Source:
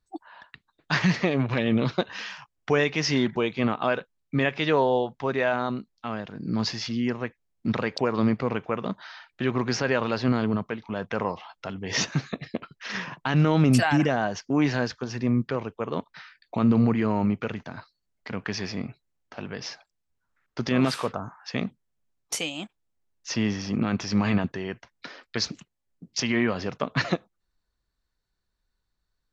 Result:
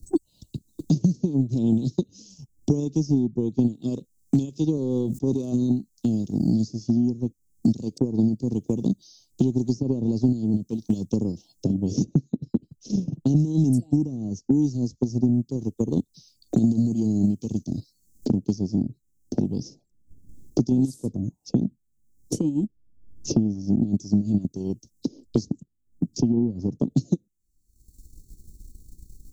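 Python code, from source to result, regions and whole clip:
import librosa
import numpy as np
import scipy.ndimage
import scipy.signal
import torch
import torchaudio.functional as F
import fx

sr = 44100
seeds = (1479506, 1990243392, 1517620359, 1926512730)

y = fx.chain(x, sr, fx.highpass(hz=120.0, slope=6),
    fx.transient(attack_db=-6, sustain_db=-1),
    fx.sustainer(db_per_s=120.0), at=(4.77, 5.52))
y = scipy.signal.sosfilt(scipy.signal.cheby1(3, 1.0, [310.0, 6800.0], 'bandstop', fs=sr, output='sos'), y)
y = fx.transient(y, sr, attack_db=7, sustain_db=-6)
y = fx.band_squash(y, sr, depth_pct=100)
y = F.gain(torch.from_numpy(y), 3.0).numpy()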